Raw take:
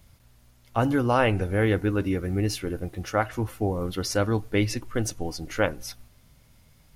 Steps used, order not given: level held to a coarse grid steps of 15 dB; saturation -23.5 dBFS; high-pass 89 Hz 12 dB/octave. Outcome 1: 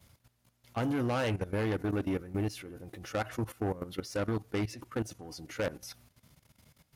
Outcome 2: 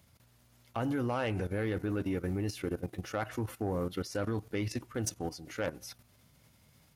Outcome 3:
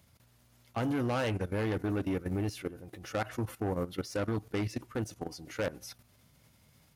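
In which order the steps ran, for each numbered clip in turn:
saturation > high-pass > level held to a coarse grid; level held to a coarse grid > saturation > high-pass; saturation > level held to a coarse grid > high-pass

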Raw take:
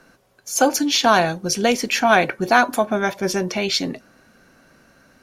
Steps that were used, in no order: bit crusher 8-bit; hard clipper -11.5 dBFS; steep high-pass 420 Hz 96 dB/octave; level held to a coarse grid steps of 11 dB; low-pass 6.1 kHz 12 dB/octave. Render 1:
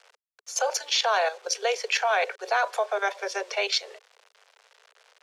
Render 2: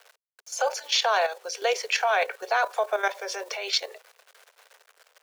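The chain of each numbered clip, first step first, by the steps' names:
level held to a coarse grid > bit crusher > steep high-pass > hard clipper > low-pass; low-pass > bit crusher > steep high-pass > level held to a coarse grid > hard clipper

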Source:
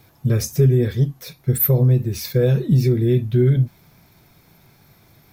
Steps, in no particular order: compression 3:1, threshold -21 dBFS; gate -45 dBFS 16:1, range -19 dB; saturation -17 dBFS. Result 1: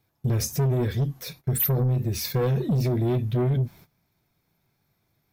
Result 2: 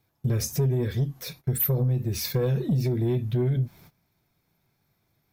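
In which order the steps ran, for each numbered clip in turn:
saturation > gate > compression; gate > compression > saturation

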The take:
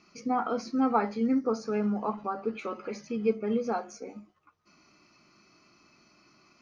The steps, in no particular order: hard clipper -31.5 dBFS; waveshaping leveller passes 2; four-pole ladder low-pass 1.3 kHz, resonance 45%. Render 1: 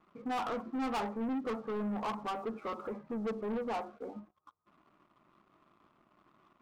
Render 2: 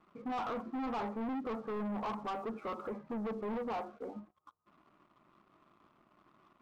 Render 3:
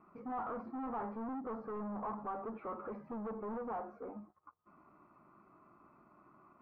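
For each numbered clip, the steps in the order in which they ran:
four-pole ladder low-pass > hard clipper > waveshaping leveller; hard clipper > four-pole ladder low-pass > waveshaping leveller; hard clipper > waveshaping leveller > four-pole ladder low-pass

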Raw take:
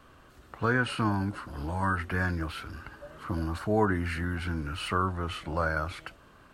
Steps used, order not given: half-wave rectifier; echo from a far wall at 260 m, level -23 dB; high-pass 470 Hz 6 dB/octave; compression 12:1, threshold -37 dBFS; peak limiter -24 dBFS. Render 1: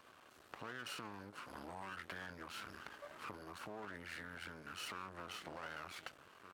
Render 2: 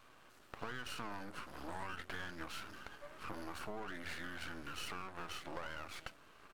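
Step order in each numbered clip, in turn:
echo from a far wall > peak limiter > compression > half-wave rectifier > high-pass; high-pass > peak limiter > echo from a far wall > compression > half-wave rectifier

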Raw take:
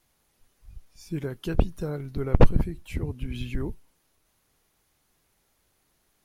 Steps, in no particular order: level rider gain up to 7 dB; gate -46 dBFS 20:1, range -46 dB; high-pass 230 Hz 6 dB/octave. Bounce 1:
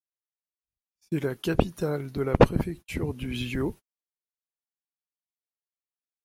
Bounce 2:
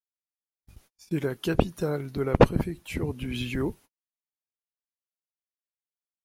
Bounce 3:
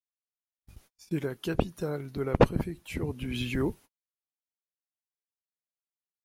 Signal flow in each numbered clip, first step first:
high-pass > gate > level rider; gate > high-pass > level rider; gate > level rider > high-pass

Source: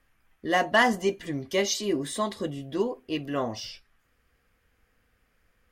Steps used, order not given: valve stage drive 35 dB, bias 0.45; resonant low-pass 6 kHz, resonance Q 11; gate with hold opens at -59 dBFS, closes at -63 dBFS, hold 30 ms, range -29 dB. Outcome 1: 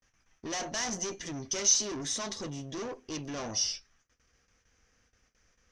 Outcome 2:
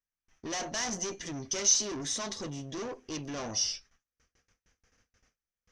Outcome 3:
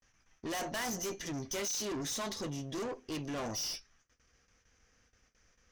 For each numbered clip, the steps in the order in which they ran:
valve stage > resonant low-pass > gate with hold; valve stage > gate with hold > resonant low-pass; resonant low-pass > valve stage > gate with hold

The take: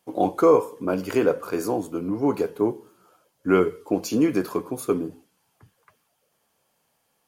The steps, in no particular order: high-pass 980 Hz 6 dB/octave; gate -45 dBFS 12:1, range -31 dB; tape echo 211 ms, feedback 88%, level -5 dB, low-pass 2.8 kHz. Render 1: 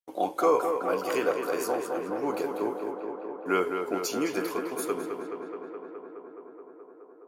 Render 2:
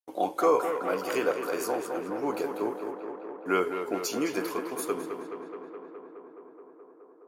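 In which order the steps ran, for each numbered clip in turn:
gate > high-pass > tape echo; gate > tape echo > high-pass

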